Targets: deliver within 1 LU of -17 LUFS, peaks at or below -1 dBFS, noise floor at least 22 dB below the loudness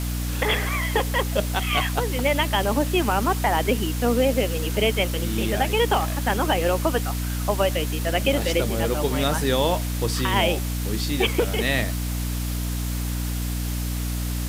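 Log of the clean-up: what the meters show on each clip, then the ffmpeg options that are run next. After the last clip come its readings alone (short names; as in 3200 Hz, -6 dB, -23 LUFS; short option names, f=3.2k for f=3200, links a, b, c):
hum 60 Hz; harmonics up to 300 Hz; hum level -24 dBFS; noise floor -27 dBFS; noise floor target -46 dBFS; loudness -23.5 LUFS; peak -7.5 dBFS; loudness target -17.0 LUFS
-> -af "bandreject=f=60:t=h:w=6,bandreject=f=120:t=h:w=6,bandreject=f=180:t=h:w=6,bandreject=f=240:t=h:w=6,bandreject=f=300:t=h:w=6"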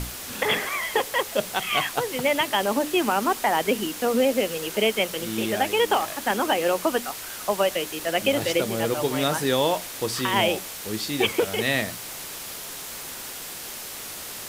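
hum none; noise floor -37 dBFS; noise floor target -47 dBFS
-> -af "afftdn=nr=10:nf=-37"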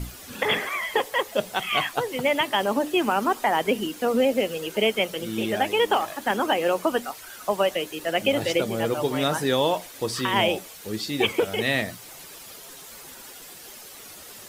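noise floor -44 dBFS; noise floor target -47 dBFS
-> -af "afftdn=nr=6:nf=-44"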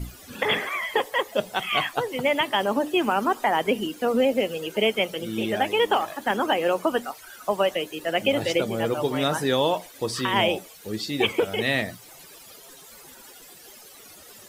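noise floor -47 dBFS; loudness -24.5 LUFS; peak -9.0 dBFS; loudness target -17.0 LUFS
-> -af "volume=7.5dB"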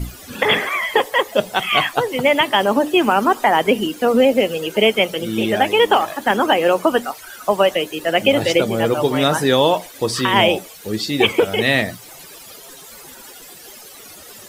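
loudness -17.0 LUFS; peak -1.5 dBFS; noise floor -40 dBFS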